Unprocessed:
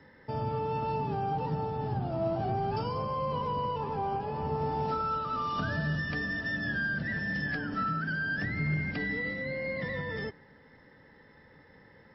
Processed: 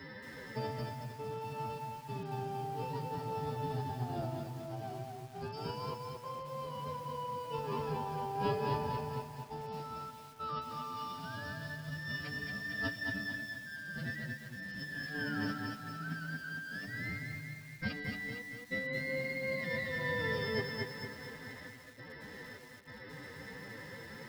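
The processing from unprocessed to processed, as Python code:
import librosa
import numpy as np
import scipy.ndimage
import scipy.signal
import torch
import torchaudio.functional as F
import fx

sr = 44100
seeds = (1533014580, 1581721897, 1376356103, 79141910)

p1 = fx.highpass(x, sr, hz=54.0, slope=6)
p2 = fx.high_shelf(p1, sr, hz=4200.0, db=10.5)
p3 = fx.notch(p2, sr, hz=840.0, q=12.0)
p4 = fx.over_compress(p3, sr, threshold_db=-38.0, ratio=-0.5)
p5 = fx.step_gate(p4, sr, bpm=101, pattern='xxx.xx.xxxxxxx', floor_db=-60.0, edge_ms=4.5)
p6 = fx.stretch_vocoder(p5, sr, factor=2.0)
p7 = p6 + fx.echo_feedback(p6, sr, ms=231, feedback_pct=52, wet_db=-8.5, dry=0)
y = fx.echo_crushed(p7, sr, ms=223, feedback_pct=35, bits=9, wet_db=-4.5)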